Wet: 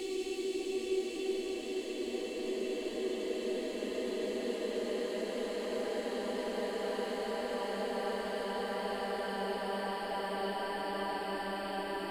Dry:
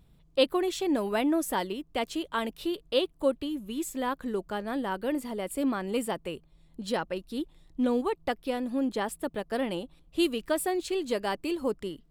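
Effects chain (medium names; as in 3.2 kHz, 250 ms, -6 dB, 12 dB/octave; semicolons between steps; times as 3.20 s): Paulstretch 29×, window 0.50 s, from 10.93 s; trim -6 dB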